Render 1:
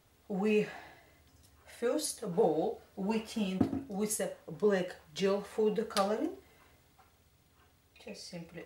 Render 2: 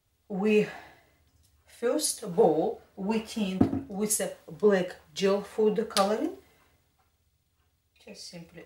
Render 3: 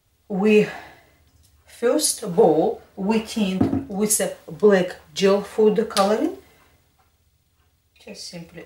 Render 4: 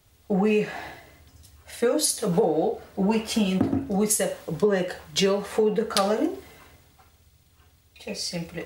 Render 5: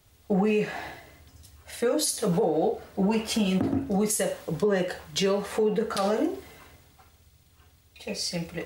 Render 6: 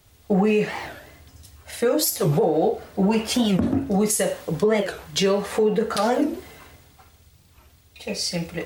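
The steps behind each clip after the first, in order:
three-band expander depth 40%; gain +4.5 dB
maximiser +12.5 dB; gain -4.5 dB
compressor 5:1, threshold -25 dBFS, peak gain reduction 13.5 dB; gain +5 dB
limiter -16 dBFS, peak gain reduction 11.5 dB
record warp 45 rpm, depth 250 cents; gain +4.5 dB

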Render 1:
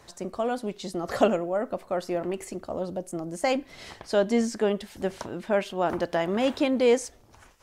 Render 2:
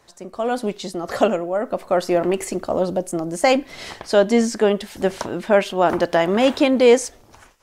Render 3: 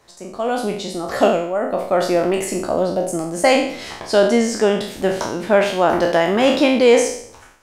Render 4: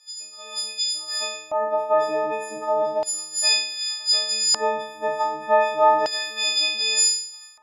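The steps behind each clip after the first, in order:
bell 72 Hz -4.5 dB 2.7 oct; AGC gain up to 14.5 dB; gain -2.5 dB
spectral trails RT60 0.62 s
frequency quantiser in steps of 6 st; LFO band-pass square 0.33 Hz 890–5000 Hz

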